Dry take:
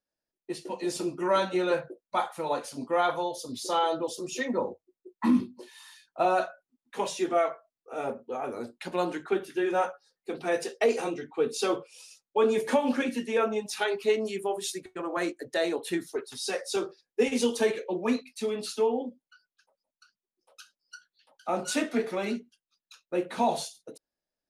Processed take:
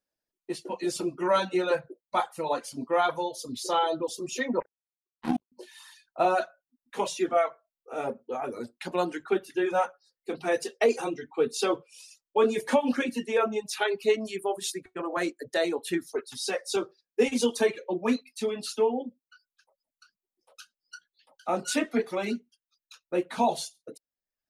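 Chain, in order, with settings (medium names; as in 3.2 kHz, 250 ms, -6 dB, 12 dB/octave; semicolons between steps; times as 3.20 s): reverb removal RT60 0.68 s; 4.60–5.52 s: power-law waveshaper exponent 3; trim +1.5 dB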